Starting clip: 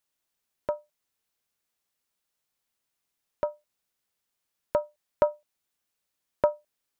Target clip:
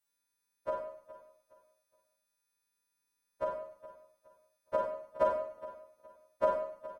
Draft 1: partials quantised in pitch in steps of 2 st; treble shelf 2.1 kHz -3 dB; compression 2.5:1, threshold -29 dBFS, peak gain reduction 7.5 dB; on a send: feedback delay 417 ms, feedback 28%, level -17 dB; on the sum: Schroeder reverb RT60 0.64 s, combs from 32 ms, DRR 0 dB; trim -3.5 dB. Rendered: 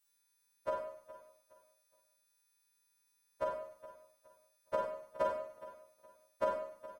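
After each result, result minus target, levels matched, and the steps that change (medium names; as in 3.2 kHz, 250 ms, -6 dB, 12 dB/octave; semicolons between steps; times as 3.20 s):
compression: peak gain reduction +7.5 dB; 4 kHz band +6.0 dB
remove: compression 2.5:1, threshold -29 dBFS, peak gain reduction 7.5 dB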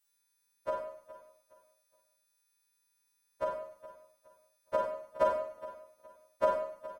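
4 kHz band +4.5 dB
change: treble shelf 2.1 kHz -10 dB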